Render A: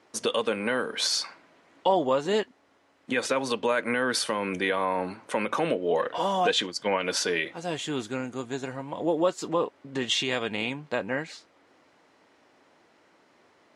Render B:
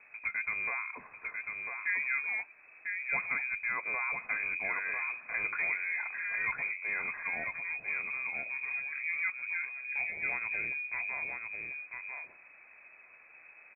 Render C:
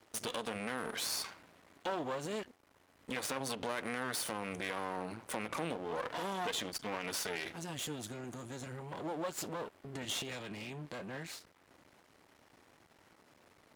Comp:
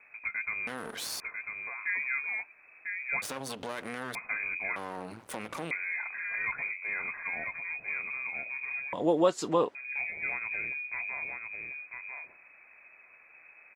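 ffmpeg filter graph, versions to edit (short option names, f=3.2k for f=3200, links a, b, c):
-filter_complex "[2:a]asplit=3[a][b][c];[1:a]asplit=5[d][e][f][g][h];[d]atrim=end=0.672[i];[a]atrim=start=0.668:end=1.202[j];[e]atrim=start=1.198:end=3.222[k];[b]atrim=start=3.218:end=4.152[l];[f]atrim=start=4.148:end=4.762[m];[c]atrim=start=4.758:end=5.712[n];[g]atrim=start=5.708:end=8.932[o];[0:a]atrim=start=8.928:end=9.752[p];[h]atrim=start=9.748[q];[i][j]acrossfade=d=0.004:c1=hsin:c2=hsin[r];[r][k]acrossfade=d=0.004:c1=hsin:c2=hsin[s];[s][l]acrossfade=d=0.004:c1=hsin:c2=hsin[t];[t][m]acrossfade=d=0.004:c1=hsin:c2=hsin[u];[u][n]acrossfade=d=0.004:c1=hsin:c2=hsin[v];[v][o]acrossfade=d=0.004:c1=hsin:c2=hsin[w];[w][p]acrossfade=d=0.004:c1=hsin:c2=hsin[x];[x][q]acrossfade=d=0.004:c1=hsin:c2=hsin"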